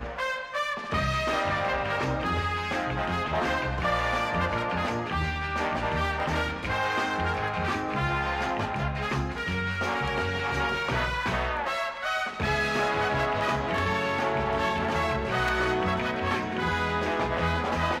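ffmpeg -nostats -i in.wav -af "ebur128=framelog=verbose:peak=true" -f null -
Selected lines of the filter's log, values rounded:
Integrated loudness:
  I:         -27.5 LUFS
  Threshold: -37.5 LUFS
Loudness range:
  LRA:         1.7 LU
  Threshold: -47.5 LUFS
  LRA low:   -28.3 LUFS
  LRA high:  -26.5 LUFS
True peak:
  Peak:      -13.5 dBFS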